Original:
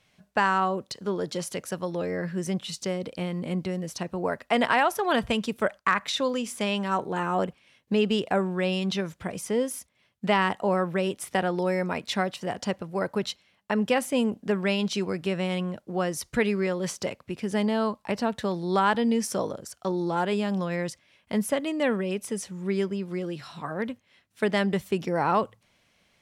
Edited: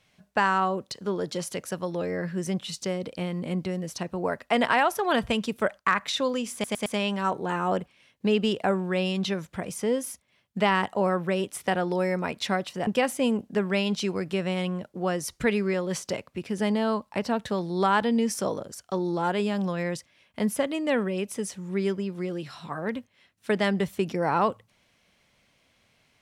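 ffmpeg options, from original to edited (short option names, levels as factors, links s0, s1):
-filter_complex "[0:a]asplit=5[s0][s1][s2][s3][s4];[s0]atrim=end=6.642[s5];[s1]atrim=start=6.528:end=6.642[s6];[s2]atrim=start=6.528:end=6.642[s7];[s3]atrim=start=6.528:end=12.542[s8];[s4]atrim=start=13.798[s9];[s5][s6]acrossfade=d=0.004:c1=hsin:c2=hsin[s10];[s10][s7]acrossfade=d=0.004:c1=hsin:c2=hsin[s11];[s11][s8]acrossfade=d=0.004:c1=hsin:c2=hsin[s12];[s12][s9]acrossfade=d=0.004:c1=hsin:c2=hsin"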